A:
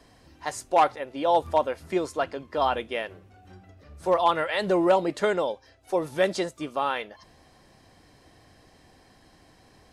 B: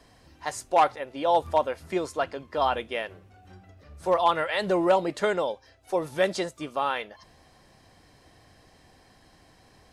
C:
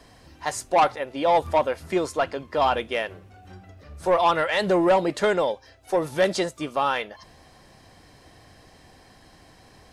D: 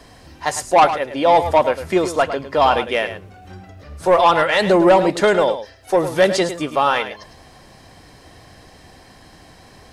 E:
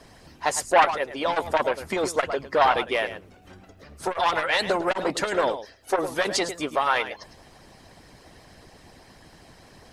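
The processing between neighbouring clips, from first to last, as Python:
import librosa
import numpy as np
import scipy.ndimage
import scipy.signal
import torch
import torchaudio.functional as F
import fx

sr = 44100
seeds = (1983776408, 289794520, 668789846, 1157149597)

y1 = fx.peak_eq(x, sr, hz=300.0, db=-2.5, octaves=1.2)
y2 = 10.0 ** (-17.0 / 20.0) * np.tanh(y1 / 10.0 ** (-17.0 / 20.0))
y2 = y2 * 10.0 ** (5.0 / 20.0)
y3 = y2 + 10.0 ** (-11.0 / 20.0) * np.pad(y2, (int(106 * sr / 1000.0), 0))[:len(y2)]
y3 = y3 * 10.0 ** (6.5 / 20.0)
y4 = fx.hpss(y3, sr, part='harmonic', gain_db=-15)
y4 = fx.transformer_sat(y4, sr, knee_hz=1200.0)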